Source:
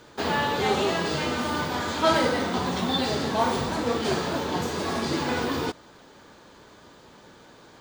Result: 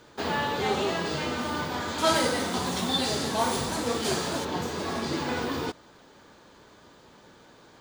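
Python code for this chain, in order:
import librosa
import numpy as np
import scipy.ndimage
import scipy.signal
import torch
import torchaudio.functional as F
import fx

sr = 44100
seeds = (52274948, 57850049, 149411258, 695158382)

y = fx.peak_eq(x, sr, hz=11000.0, db=13.5, octaves=1.6, at=(1.98, 4.45))
y = y * librosa.db_to_amplitude(-3.0)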